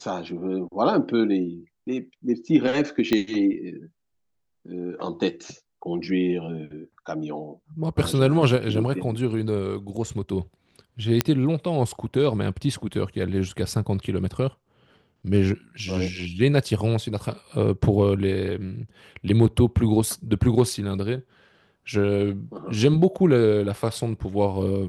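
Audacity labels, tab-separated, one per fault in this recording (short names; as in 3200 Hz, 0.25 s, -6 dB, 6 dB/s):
3.130000	3.130000	pop -9 dBFS
11.210000	11.210000	pop -3 dBFS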